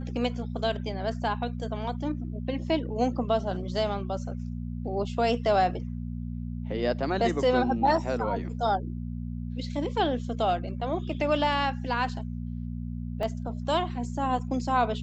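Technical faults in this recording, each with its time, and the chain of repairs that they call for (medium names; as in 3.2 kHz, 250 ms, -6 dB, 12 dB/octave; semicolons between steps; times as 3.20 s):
hum 60 Hz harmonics 4 -34 dBFS
13.23 s: dropout 2.4 ms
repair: de-hum 60 Hz, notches 4; interpolate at 13.23 s, 2.4 ms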